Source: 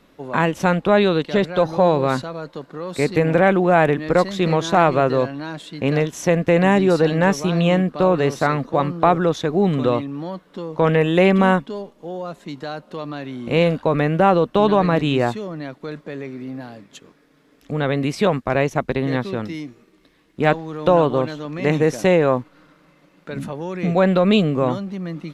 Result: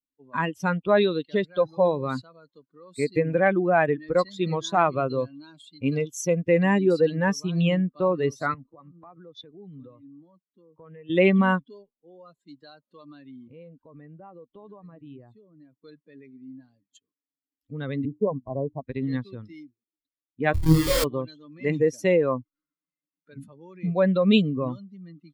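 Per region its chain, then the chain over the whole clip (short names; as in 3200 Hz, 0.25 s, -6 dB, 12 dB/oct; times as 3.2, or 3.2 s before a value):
4.98–6.38 Butterworth band-stop 1800 Hz, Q 5 + high shelf 6200 Hz +5 dB
8.54–11.1 compressor 4:1, threshold -26 dBFS + air absorption 170 m + three-band expander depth 40%
13.47–15.79 high shelf 2000 Hz -8.5 dB + compressor 2.5:1, threshold -30 dBFS
18.05–18.81 steep low-pass 1100 Hz 96 dB/oct + notches 60/120/180/240/300/360 Hz
20.54–21.04 elliptic band-pass 120–2000 Hz + Schmitt trigger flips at -26 dBFS + flutter echo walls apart 4.3 m, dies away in 0.84 s
whole clip: per-bin expansion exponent 2; bell 790 Hz -3 dB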